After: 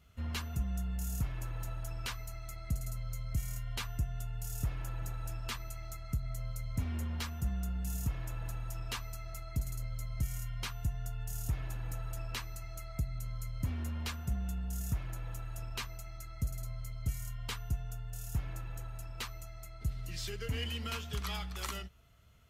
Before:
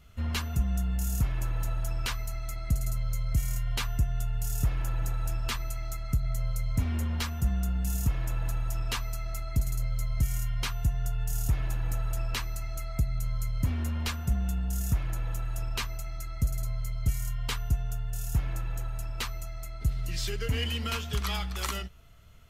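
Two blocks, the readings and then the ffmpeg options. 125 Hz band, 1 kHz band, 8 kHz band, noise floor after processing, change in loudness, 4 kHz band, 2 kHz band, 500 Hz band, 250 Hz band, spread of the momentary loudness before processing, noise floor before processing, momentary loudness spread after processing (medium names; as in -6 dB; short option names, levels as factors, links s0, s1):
-7.0 dB, -6.5 dB, -6.5 dB, -46 dBFS, -7.5 dB, -6.5 dB, -6.5 dB, -6.5 dB, -6.5 dB, 6 LU, -37 dBFS, 7 LU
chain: -af "highpass=43,volume=0.473"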